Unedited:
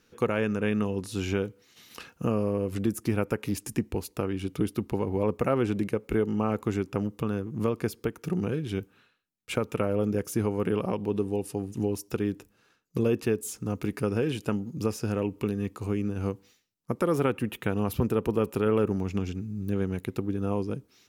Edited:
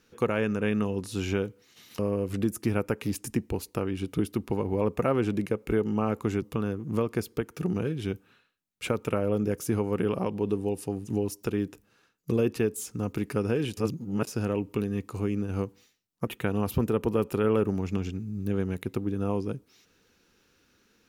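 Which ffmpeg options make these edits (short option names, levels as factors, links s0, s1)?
-filter_complex "[0:a]asplit=6[s0][s1][s2][s3][s4][s5];[s0]atrim=end=1.992[s6];[s1]atrim=start=2.408:end=6.842[s7];[s2]atrim=start=7.088:end=14.442[s8];[s3]atrim=start=14.438:end=14.942,asetpts=PTS-STARTPTS,areverse[s9];[s4]atrim=start=14.938:end=16.942[s10];[s5]atrim=start=17.488[s11];[s6][s7]acrossfade=d=0.004:c1=hsin:c2=hsin[s12];[s12][s8]acrossfade=d=0.004:c1=hsin:c2=hsin[s13];[s13][s9]acrossfade=d=0.004:c1=hsin:c2=hsin[s14];[s14][s10]acrossfade=d=0.004:c1=hsin:c2=hsin[s15];[s15][s11]acrossfade=d=0.004:c1=hsin:c2=hsin"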